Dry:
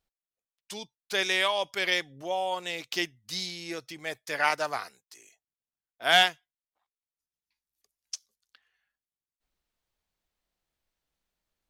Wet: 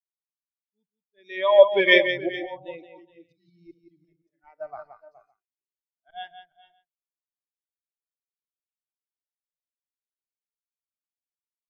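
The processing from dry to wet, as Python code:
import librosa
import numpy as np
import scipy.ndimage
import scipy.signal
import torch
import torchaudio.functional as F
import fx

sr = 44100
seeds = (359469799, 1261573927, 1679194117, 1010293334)

p1 = fx.low_shelf(x, sr, hz=270.0, db=10.0)
p2 = fx.auto_swell(p1, sr, attack_ms=629.0)
p3 = fx.schmitt(p2, sr, flips_db=-33.0)
p4 = p2 + F.gain(torch.from_numpy(p3), -11.0).numpy()
p5 = fx.echo_multitap(p4, sr, ms=(69, 172, 304, 419, 455, 562), db=(-15.5, -4.0, -19.5, -7.5, -14.0, -12.5))
p6 = fx.spectral_expand(p5, sr, expansion=2.5)
y = F.gain(torch.from_numpy(p6), 7.5).numpy()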